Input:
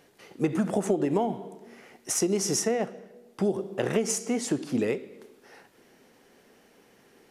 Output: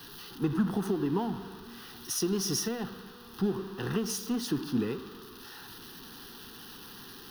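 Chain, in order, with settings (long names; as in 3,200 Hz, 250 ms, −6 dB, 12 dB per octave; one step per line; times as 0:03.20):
converter with a step at zero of −33 dBFS
phaser with its sweep stopped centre 2,200 Hz, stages 6
multiband upward and downward expander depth 40%
level −1.5 dB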